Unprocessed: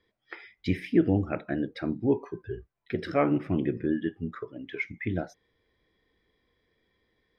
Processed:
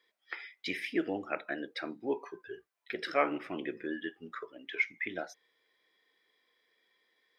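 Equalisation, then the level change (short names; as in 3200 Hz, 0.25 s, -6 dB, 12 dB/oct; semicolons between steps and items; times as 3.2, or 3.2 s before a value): HPF 370 Hz 12 dB/oct; tilt shelf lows -5.5 dB, about 840 Hz; -1.5 dB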